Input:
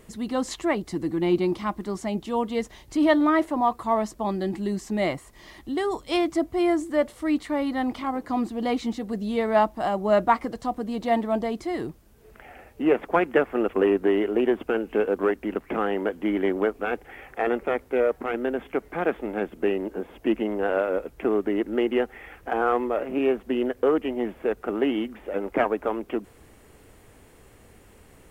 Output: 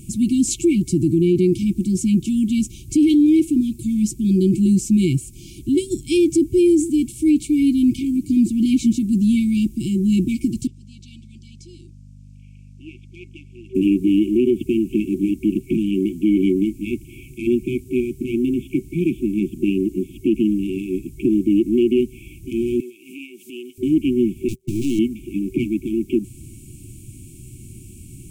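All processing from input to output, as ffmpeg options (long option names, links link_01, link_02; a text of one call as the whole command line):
ffmpeg -i in.wav -filter_complex "[0:a]asettb=1/sr,asplit=3[link_01][link_02][link_03];[link_01]atrim=end=10.674[link_04];[link_02]atrim=start=10.67:end=13.75,asetpts=PTS-STARTPTS,afade=type=in:duration=0.004:curve=qsin,afade=type=out:start_time=3.076:duration=0.004:curve=qsin,bandpass=frequency=5400:width_type=q:width=1.6,aeval=exprs='val(0)+0.00141*(sin(2*PI*50*n/s)+sin(2*PI*2*50*n/s)/2+sin(2*PI*3*50*n/s)/3+sin(2*PI*4*50*n/s)/4+sin(2*PI*5*50*n/s)/5)':channel_layout=same,aemphasis=mode=reproduction:type=75fm[link_05];[link_03]atrim=start=13.746[link_06];[link_04][link_05]acrossfade=duration=0.004:curve1=hsin:curve2=qsin[link_07];[link_07][link_06]acrossfade=duration=0.004:curve1=qsin:curve2=hsin,asettb=1/sr,asplit=3[link_08][link_09][link_10];[link_08]atrim=end=22.804[link_11];[link_09]atrim=start=22.8:end=23.78,asetpts=PTS-STARTPTS,afade=type=in:duration=0.004:curve=qsin,afade=type=out:start_time=0.976:duration=0.004:curve=qsin,highpass=360,acompressor=threshold=-39dB:ratio=4:attack=3.2:release=140:knee=1:detection=peak,tiltshelf=frequency=650:gain=-7.5[link_12];[link_10]atrim=start=23.776[link_13];[link_11][link_12]acrossfade=duration=0.004:curve1=hsin:curve2=qsin[link_14];[link_14][link_13]acrossfade=duration=0.004:curve1=qsin:curve2=hsin,asettb=1/sr,asplit=3[link_15][link_16][link_17];[link_15]atrim=end=24.484[link_18];[link_16]atrim=start=24.48:end=24.99,asetpts=PTS-STARTPTS,afade=type=in:duration=0.004:curve=qsin,afade=type=out:start_time=0.506:duration=0.004:curve=qsin,aeval=exprs='val(0)+0.5*0.02*sgn(val(0))':channel_layout=same,agate=range=-40dB:threshold=-28dB:ratio=16:release=100:detection=peak,aeval=exprs='(tanh(28.2*val(0)+0.65)-tanh(0.65))/28.2':channel_layout=same[link_19];[link_17]atrim=start=24.986[link_20];[link_18][link_19]acrossfade=duration=0.004:curve1=hsin:curve2=qsin[link_21];[link_21][link_20]acrossfade=duration=0.004:curve1=qsin:curve2=hsin,afftfilt=real='re*(1-between(b*sr/4096,380,2200))':imag='im*(1-between(b*sr/4096,380,2200))':win_size=4096:overlap=0.75,equalizer=frequency=125:width_type=o:width=1:gain=11,equalizer=frequency=2000:width_type=o:width=1:gain=-4,equalizer=frequency=4000:width_type=o:width=1:gain=-8,equalizer=frequency=8000:width_type=o:width=1:gain=8,alimiter=level_in=18dB:limit=-1dB:release=50:level=0:latency=1,volume=-8dB" out.wav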